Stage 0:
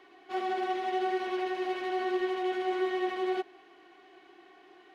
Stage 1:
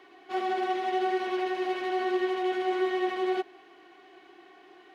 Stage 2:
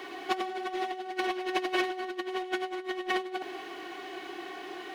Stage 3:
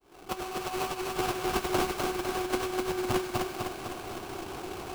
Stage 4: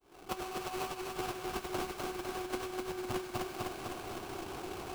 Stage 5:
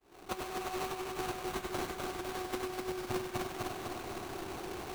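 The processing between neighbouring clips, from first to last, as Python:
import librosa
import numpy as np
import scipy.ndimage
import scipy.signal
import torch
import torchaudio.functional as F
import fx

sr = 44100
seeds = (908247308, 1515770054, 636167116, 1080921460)

y1 = scipy.signal.sosfilt(scipy.signal.butter(2, 41.0, 'highpass', fs=sr, output='sos'), x)
y1 = y1 * librosa.db_to_amplitude(2.5)
y2 = fx.high_shelf(y1, sr, hz=5400.0, db=9.0)
y2 = fx.over_compress(y2, sr, threshold_db=-35.0, ratio=-0.5)
y2 = y2 * librosa.db_to_amplitude(4.0)
y3 = fx.fade_in_head(y2, sr, length_s=0.58)
y3 = fx.sample_hold(y3, sr, seeds[0], rate_hz=1900.0, jitter_pct=20)
y3 = fx.echo_feedback(y3, sr, ms=252, feedback_pct=57, wet_db=-3.5)
y4 = fx.rider(y3, sr, range_db=3, speed_s=0.5)
y4 = y4 * librosa.db_to_amplitude(-6.5)
y5 = fx.sample_hold(y4, sr, seeds[1], rate_hz=5100.0, jitter_pct=20)
y5 = y5 + 10.0 ** (-8.5 / 20.0) * np.pad(y5, (int(97 * sr / 1000.0), 0))[:len(y5)]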